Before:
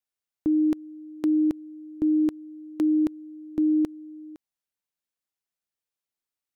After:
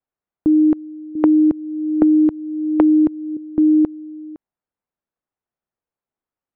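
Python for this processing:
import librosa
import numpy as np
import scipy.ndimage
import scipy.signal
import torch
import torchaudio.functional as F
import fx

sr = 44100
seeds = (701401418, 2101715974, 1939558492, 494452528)

y = scipy.signal.sosfilt(scipy.signal.butter(2, 1200.0, 'lowpass', fs=sr, output='sos'), x)
y = fx.band_squash(y, sr, depth_pct=100, at=(1.15, 3.37))
y = y * librosa.db_to_amplitude(8.5)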